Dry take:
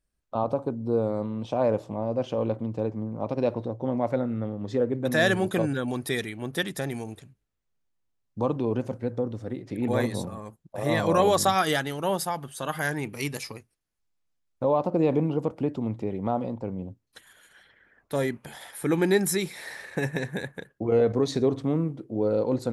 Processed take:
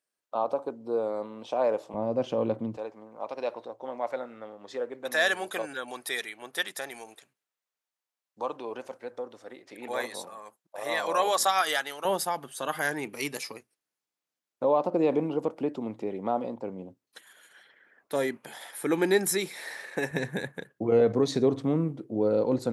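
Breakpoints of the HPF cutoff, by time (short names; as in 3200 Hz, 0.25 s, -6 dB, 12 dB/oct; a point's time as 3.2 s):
440 Hz
from 1.94 s 160 Hz
from 2.77 s 690 Hz
from 12.05 s 280 Hz
from 20.11 s 130 Hz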